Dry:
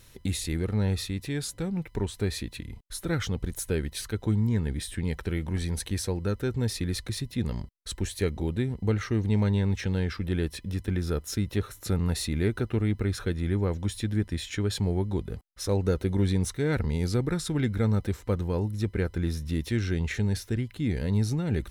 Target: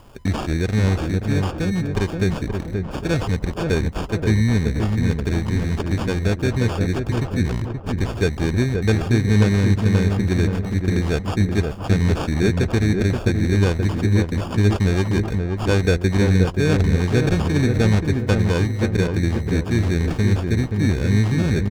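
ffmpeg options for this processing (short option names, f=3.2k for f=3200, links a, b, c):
-filter_complex "[0:a]acrusher=samples=22:mix=1:aa=0.000001,acrossover=split=8000[a][b];[b]acompressor=threshold=-59dB:ratio=4:attack=1:release=60[c];[a][c]amix=inputs=2:normalize=0,asplit=2[d][e];[e]adelay=527,lowpass=f=1.2k:p=1,volume=-4dB,asplit=2[f][g];[g]adelay=527,lowpass=f=1.2k:p=1,volume=0.45,asplit=2[h][i];[i]adelay=527,lowpass=f=1.2k:p=1,volume=0.45,asplit=2[j][k];[k]adelay=527,lowpass=f=1.2k:p=1,volume=0.45,asplit=2[l][m];[m]adelay=527,lowpass=f=1.2k:p=1,volume=0.45,asplit=2[n][o];[o]adelay=527,lowpass=f=1.2k:p=1,volume=0.45[p];[d][f][h][j][l][n][p]amix=inputs=7:normalize=0,volume=7.5dB"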